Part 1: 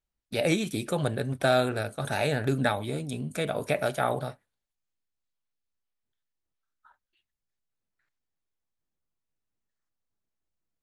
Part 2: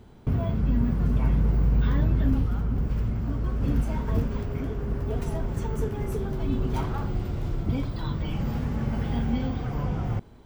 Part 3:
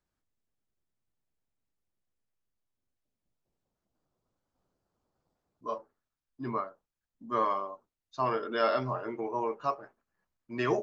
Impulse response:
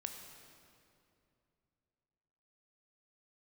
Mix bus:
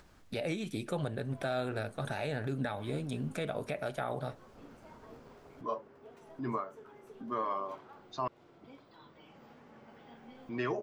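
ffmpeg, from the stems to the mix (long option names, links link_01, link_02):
-filter_complex "[0:a]volume=-2dB[link_01];[1:a]highpass=400,adelay=950,volume=-17dB[link_02];[2:a]acompressor=mode=upward:threshold=-39dB:ratio=2.5,volume=0dB,asplit=3[link_03][link_04][link_05];[link_03]atrim=end=8.28,asetpts=PTS-STARTPTS,afade=type=out:start_time=8.276:duration=0.004:curve=hsin[link_06];[link_04]atrim=start=8.28:end=10.02,asetpts=PTS-STARTPTS,volume=0[link_07];[link_05]atrim=start=10.02,asetpts=PTS-STARTPTS,afade=type=in:duration=0.004:curve=hsin[link_08];[link_06][link_07][link_08]concat=n=3:v=0:a=1[link_09];[link_01][link_02][link_09]amix=inputs=3:normalize=0,highshelf=frequency=7200:gain=-11.5,alimiter=limit=-24dB:level=0:latency=1:release=297"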